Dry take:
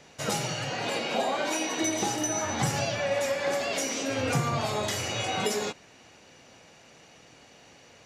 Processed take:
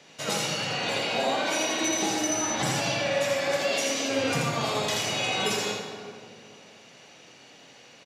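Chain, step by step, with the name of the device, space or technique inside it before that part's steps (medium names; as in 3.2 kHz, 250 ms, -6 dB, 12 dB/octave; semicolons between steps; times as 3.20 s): PA in a hall (high-pass 150 Hz 12 dB/octave; peaking EQ 3.5 kHz +5 dB 1.1 oct; delay 82 ms -4 dB; reverberation RT60 2.4 s, pre-delay 38 ms, DRR 4.5 dB); trim -1.5 dB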